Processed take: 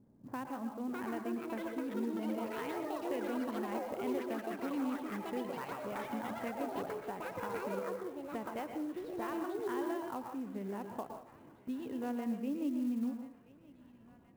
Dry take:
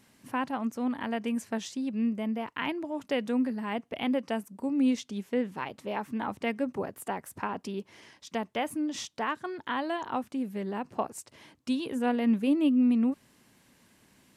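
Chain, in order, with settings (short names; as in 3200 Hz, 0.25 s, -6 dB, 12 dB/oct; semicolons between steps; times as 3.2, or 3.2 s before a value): median filter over 9 samples; compressor 2:1, threshold -46 dBFS, peak gain reduction 13.5 dB; low-pass opened by the level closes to 410 Hz, open at -34.5 dBFS; echoes that change speed 0.703 s, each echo +6 st, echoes 3; tape spacing loss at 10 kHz 20 dB; thinning echo 1.029 s, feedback 62%, high-pass 810 Hz, level -15.5 dB; reverb RT60 0.40 s, pre-delay 0.107 s, DRR 5.5 dB; clock jitter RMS 0.02 ms; gain +1 dB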